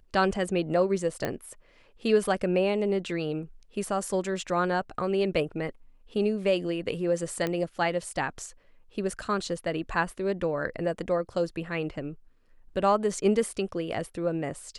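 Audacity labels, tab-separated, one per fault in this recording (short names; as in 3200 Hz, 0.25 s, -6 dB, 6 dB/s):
1.250000	1.250000	pop -15 dBFS
7.470000	7.470000	pop -16 dBFS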